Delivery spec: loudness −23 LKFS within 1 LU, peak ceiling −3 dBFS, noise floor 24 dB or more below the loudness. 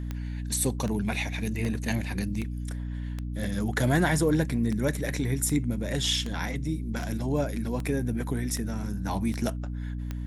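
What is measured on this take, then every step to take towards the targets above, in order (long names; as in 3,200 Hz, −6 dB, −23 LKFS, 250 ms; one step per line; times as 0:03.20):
number of clicks 14; mains hum 60 Hz; hum harmonics up to 300 Hz; level of the hum −31 dBFS; integrated loudness −29.0 LKFS; sample peak −11.5 dBFS; target loudness −23.0 LKFS
→ click removal
hum removal 60 Hz, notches 5
level +6 dB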